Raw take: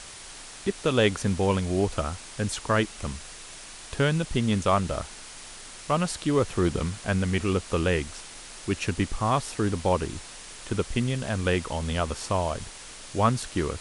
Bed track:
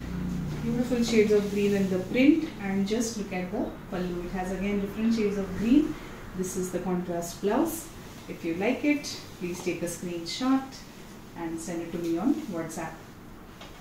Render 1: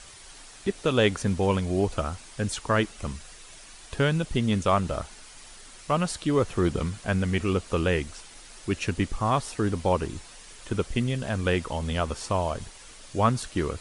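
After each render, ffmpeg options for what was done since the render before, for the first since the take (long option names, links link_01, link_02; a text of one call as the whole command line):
ffmpeg -i in.wav -af "afftdn=noise_reduction=7:noise_floor=-44" out.wav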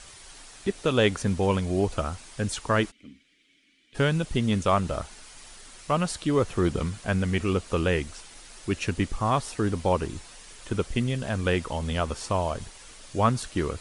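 ffmpeg -i in.wav -filter_complex "[0:a]asplit=3[link_01][link_02][link_03];[link_01]afade=type=out:start_time=2.9:duration=0.02[link_04];[link_02]asplit=3[link_05][link_06][link_07];[link_05]bandpass=frequency=270:width_type=q:width=8,volume=0dB[link_08];[link_06]bandpass=frequency=2290:width_type=q:width=8,volume=-6dB[link_09];[link_07]bandpass=frequency=3010:width_type=q:width=8,volume=-9dB[link_10];[link_08][link_09][link_10]amix=inputs=3:normalize=0,afade=type=in:start_time=2.9:duration=0.02,afade=type=out:start_time=3.94:duration=0.02[link_11];[link_03]afade=type=in:start_time=3.94:duration=0.02[link_12];[link_04][link_11][link_12]amix=inputs=3:normalize=0" out.wav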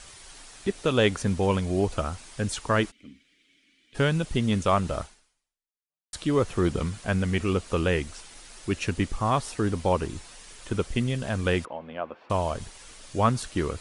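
ffmpeg -i in.wav -filter_complex "[0:a]asettb=1/sr,asplit=3[link_01][link_02][link_03];[link_01]atrim=end=11.654[link_04];[link_02]atrim=start=11.65:end=12.3,asetpts=PTS-STARTPTS,afade=type=in:duration=0.004:curve=qsin,afade=type=out:start_time=0.646:duration=0.004:curve=qsin,highpass=380,equalizer=frequency=430:width_type=q:width=4:gain=-7,equalizer=frequency=900:width_type=q:width=4:gain=-5,equalizer=frequency=1300:width_type=q:width=4:gain=-7,equalizer=frequency=1900:width_type=q:width=4:gain=-9,lowpass=frequency=2100:width=0.5412,lowpass=frequency=2100:width=1.3066[link_05];[link_03]atrim=start=12.296[link_06];[link_04][link_05]acrossfade=duration=0.004:curve1=hsin:curve2=qsin[link_07];[link_07][link_06]acrossfade=duration=0.004:curve1=qsin:curve2=hsin,asplit=2[link_08][link_09];[link_08]atrim=end=6.13,asetpts=PTS-STARTPTS,afade=type=out:start_time=5.02:duration=1.11:curve=exp[link_10];[link_09]atrim=start=6.13,asetpts=PTS-STARTPTS,afade=type=in:duration=0.004:curve=hsin[link_11];[link_10][link_11]concat=n=2:v=0:a=1" out.wav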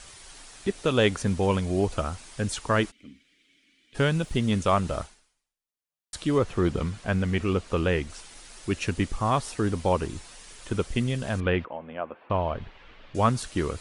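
ffmpeg -i in.wav -filter_complex "[0:a]asettb=1/sr,asplit=3[link_01][link_02][link_03];[link_01]atrim=end=4.094[link_04];[link_02]atrim=start=4.09:end=4.52,asetpts=PTS-STARTPTS,afade=type=in:duration=0.004:curve=qsin,afade=type=out:start_time=0.426:duration=0.004:curve=qsin,aeval=exprs='sgn(val(0))*max(abs(val(0))-0.00119,0)':channel_layout=same[link_05];[link_03]atrim=start=4.516[link_06];[link_04][link_05]acrossfade=duration=0.004:curve1=hsin:curve2=qsin[link_07];[link_07][link_06]acrossfade=duration=0.004:curve1=qsin:curve2=hsin,asettb=1/sr,asplit=3[link_08][link_09][link_10];[link_08]atrim=end=6.384[link_11];[link_09]atrim=start=6.38:end=8.1,asetpts=PTS-STARTPTS,afade=type=in:duration=0.004:curve=qsin,afade=type=out:start_time=1.716:duration=0.004:curve=qsin,highshelf=frequency=7200:gain=-10.5[link_12];[link_10]atrim=start=8.096[link_13];[link_11][link_12]acrossfade=duration=0.004:curve1=hsin:curve2=qsin[link_14];[link_14][link_13]acrossfade=duration=0.004:curve1=qsin:curve2=hsin,asettb=1/sr,asplit=3[link_15][link_16][link_17];[link_15]atrim=end=11.404[link_18];[link_16]atrim=start=11.4:end=13.15,asetpts=PTS-STARTPTS,afade=type=in:duration=0.004:curve=qsin,afade=type=out:start_time=1.746:duration=0.004:curve=qsin,lowpass=frequency=3100:width=0.5412,lowpass=frequency=3100:width=1.3066[link_19];[link_17]atrim=start=13.146[link_20];[link_18][link_19]acrossfade=duration=0.004:curve1=hsin:curve2=qsin[link_21];[link_21][link_20]acrossfade=duration=0.004:curve1=qsin:curve2=hsin" out.wav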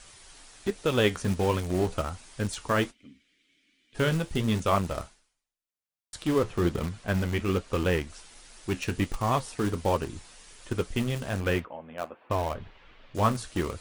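ffmpeg -i in.wav -filter_complex "[0:a]asplit=2[link_01][link_02];[link_02]acrusher=bits=3:mix=0:aa=0.000001,volume=-10.5dB[link_03];[link_01][link_03]amix=inputs=2:normalize=0,flanger=delay=7.6:depth=5.9:regen=-59:speed=1.3:shape=sinusoidal" out.wav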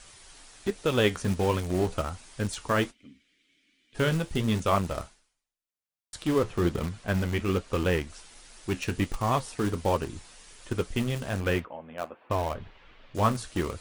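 ffmpeg -i in.wav -af anull out.wav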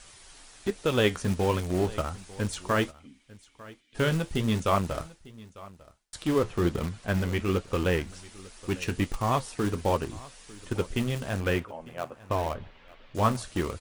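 ffmpeg -i in.wav -af "aecho=1:1:899:0.0944" out.wav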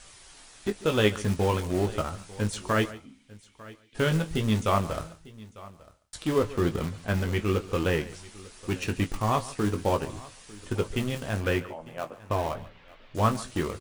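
ffmpeg -i in.wav -filter_complex "[0:a]asplit=2[link_01][link_02];[link_02]adelay=19,volume=-9dB[link_03];[link_01][link_03]amix=inputs=2:normalize=0,aecho=1:1:141:0.126" out.wav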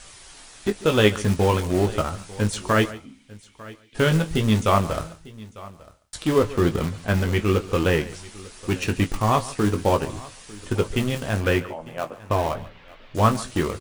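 ffmpeg -i in.wav -af "volume=5.5dB" out.wav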